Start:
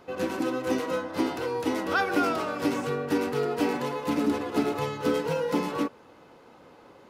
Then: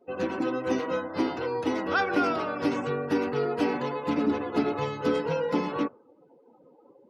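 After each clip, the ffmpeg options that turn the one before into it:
ffmpeg -i in.wav -af "afftdn=noise_reduction=27:noise_floor=-45" out.wav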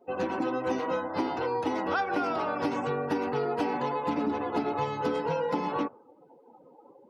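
ffmpeg -i in.wav -af "equalizer=frequency=840:width_type=o:width=0.56:gain=8,acompressor=threshold=-25dB:ratio=6" out.wav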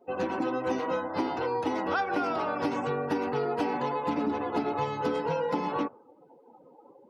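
ffmpeg -i in.wav -af anull out.wav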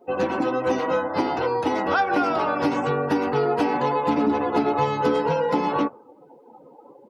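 ffmpeg -i in.wav -filter_complex "[0:a]asplit=2[link_01][link_02];[link_02]adelay=14,volume=-12dB[link_03];[link_01][link_03]amix=inputs=2:normalize=0,volume=6.5dB" out.wav

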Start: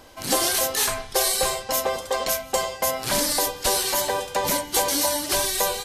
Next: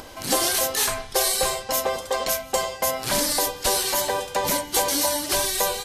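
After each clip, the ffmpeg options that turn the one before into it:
ffmpeg -i in.wav -af "acompressor=mode=upward:threshold=-34dB:ratio=2.5" out.wav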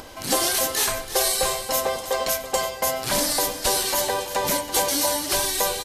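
ffmpeg -i in.wav -af "aecho=1:1:331|662|993|1324:0.237|0.102|0.0438|0.0189" out.wav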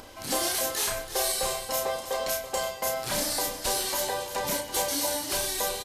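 ffmpeg -i in.wav -filter_complex "[0:a]asoftclip=type=tanh:threshold=-9dB,asplit=2[link_01][link_02];[link_02]adelay=32,volume=-5dB[link_03];[link_01][link_03]amix=inputs=2:normalize=0,volume=-6.5dB" out.wav

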